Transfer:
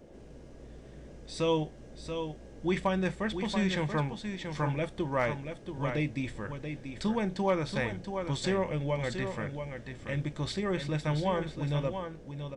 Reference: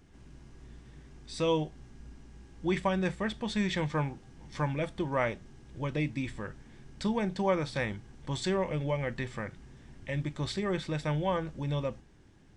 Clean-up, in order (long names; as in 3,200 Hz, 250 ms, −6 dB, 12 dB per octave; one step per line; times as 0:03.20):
clipped peaks rebuilt −18 dBFS
noise reduction from a noise print 6 dB
echo removal 682 ms −7.5 dB